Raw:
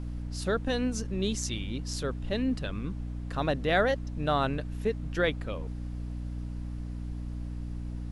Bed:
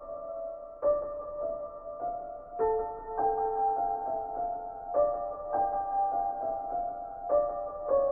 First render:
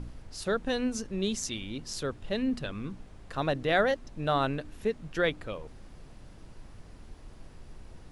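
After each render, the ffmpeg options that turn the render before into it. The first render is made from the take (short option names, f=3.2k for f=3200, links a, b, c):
-af "bandreject=f=60:t=h:w=4,bandreject=f=120:t=h:w=4,bandreject=f=180:t=h:w=4,bandreject=f=240:t=h:w=4,bandreject=f=300:t=h:w=4"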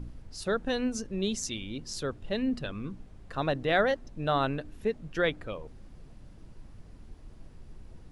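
-af "afftdn=nr=6:nf=-50"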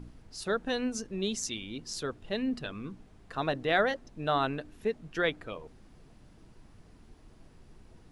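-af "lowshelf=f=140:g=-9,bandreject=f=550:w=12"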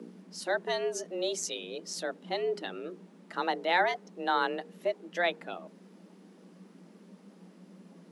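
-af "afreqshift=170"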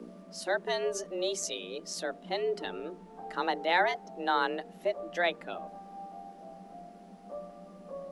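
-filter_complex "[1:a]volume=-16dB[a];[0:a][a]amix=inputs=2:normalize=0"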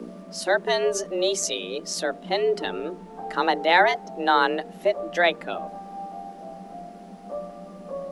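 -af "volume=8.5dB"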